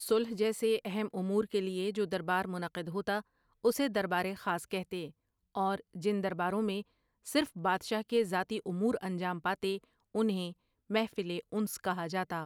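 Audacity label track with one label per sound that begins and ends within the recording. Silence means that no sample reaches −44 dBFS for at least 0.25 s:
3.650000	5.090000	sound
5.550000	6.820000	sound
7.270000	9.780000	sound
10.150000	10.520000	sound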